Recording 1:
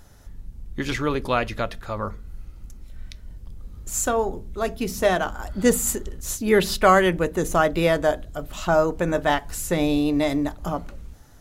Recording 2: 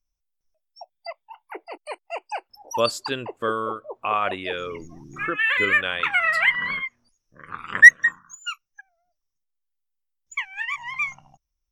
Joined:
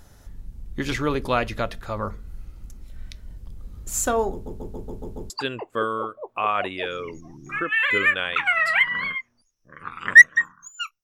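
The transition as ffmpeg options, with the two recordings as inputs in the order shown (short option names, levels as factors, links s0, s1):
-filter_complex "[0:a]apad=whole_dur=11.03,atrim=end=11.03,asplit=7[s0][s1][s2][s3][s4][s5][s6];[s0]atrim=end=4.462[s7];[s1]atrim=start=4.318:end=4.462[s8];[s2]atrim=start=4.318:end=4.462[s9];[s3]atrim=start=4.318:end=4.462[s10];[s4]atrim=start=4.318:end=4.462[s11];[s5]atrim=start=4.318:end=4.462[s12];[s6]atrim=start=4.318:end=4.462[s13];[1:a]atrim=start=2.968:end=8.7[s14];[s7][s8]acrossfade=d=0.004:c1=hsin:c2=hsin[s15];[s15][s9]acrossfade=d=0.004:c1=hsin:c2=hsin[s16];[s16][s10]acrossfade=d=0.004:c1=hsin:c2=hsin[s17];[s17][s11]acrossfade=d=0.004:c1=hsin:c2=hsin[s18];[s18][s12]acrossfade=d=0.004:c1=hsin:c2=hsin[s19];[s19][s13]acrossfade=d=0.004:c1=hsin:c2=hsin[s20];[s20][s14]acrossfade=d=0.004:c1=hsin:c2=hsin"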